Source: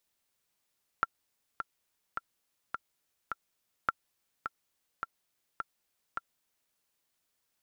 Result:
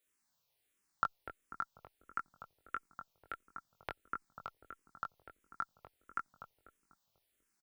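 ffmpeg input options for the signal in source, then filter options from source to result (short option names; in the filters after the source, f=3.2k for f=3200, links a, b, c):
-f lavfi -i "aevalsrc='pow(10,(-13-8*gte(mod(t,5*60/105),60/105))/20)*sin(2*PI*1360*mod(t,60/105))*exp(-6.91*mod(t,60/105)/0.03)':d=5.71:s=44100"
-filter_complex "[0:a]asplit=2[a][b];[b]adelay=21,volume=-4dB[c];[a][c]amix=inputs=2:normalize=0,asplit=2[d][e];[e]adelay=246,lowpass=f=860:p=1,volume=-4dB,asplit=2[f][g];[g]adelay=246,lowpass=f=860:p=1,volume=0.54,asplit=2[h][i];[i]adelay=246,lowpass=f=860:p=1,volume=0.54,asplit=2[j][k];[k]adelay=246,lowpass=f=860:p=1,volume=0.54,asplit=2[l][m];[m]adelay=246,lowpass=f=860:p=1,volume=0.54,asplit=2[n][o];[o]adelay=246,lowpass=f=860:p=1,volume=0.54,asplit=2[p][q];[q]adelay=246,lowpass=f=860:p=1,volume=0.54[r];[d][f][h][j][l][n][p][r]amix=inputs=8:normalize=0,asplit=2[s][t];[t]afreqshift=-1.5[u];[s][u]amix=inputs=2:normalize=1"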